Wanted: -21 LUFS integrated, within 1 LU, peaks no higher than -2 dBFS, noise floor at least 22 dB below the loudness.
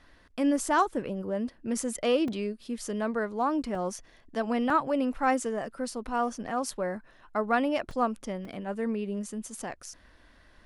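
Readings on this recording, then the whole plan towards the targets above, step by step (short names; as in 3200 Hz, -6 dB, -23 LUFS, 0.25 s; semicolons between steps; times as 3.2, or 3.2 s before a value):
dropouts 5; longest dropout 2.8 ms; loudness -30.0 LUFS; peak -13.5 dBFS; loudness target -21.0 LUFS
-> interpolate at 2.28/3.75/4.7/7.91/8.45, 2.8 ms; gain +9 dB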